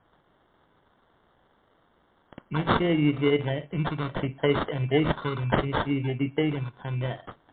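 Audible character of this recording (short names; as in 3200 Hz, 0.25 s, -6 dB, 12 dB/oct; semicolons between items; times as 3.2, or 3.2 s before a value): a quantiser's noise floor 10-bit, dither triangular; phasing stages 6, 0.7 Hz, lowest notch 590–2600 Hz; aliases and images of a low sample rate 2500 Hz, jitter 0%; MP3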